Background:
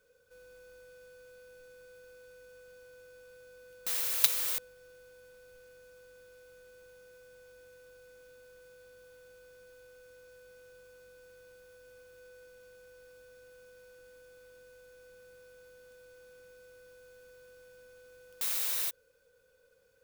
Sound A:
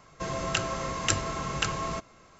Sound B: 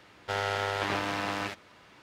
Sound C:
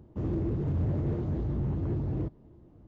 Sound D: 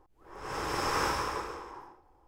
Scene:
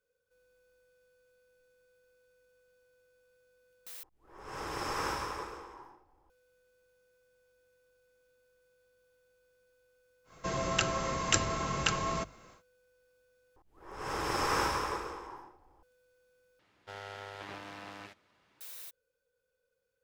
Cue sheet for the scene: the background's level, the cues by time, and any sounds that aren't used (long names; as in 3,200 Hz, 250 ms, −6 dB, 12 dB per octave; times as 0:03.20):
background −14 dB
0:04.03: overwrite with D −5 dB
0:10.24: mix in A −1 dB, fades 0.10 s + mains-hum notches 50/100/150 Hz
0:13.56: overwrite with D −0.5 dB
0:16.59: overwrite with B −14.5 dB
not used: C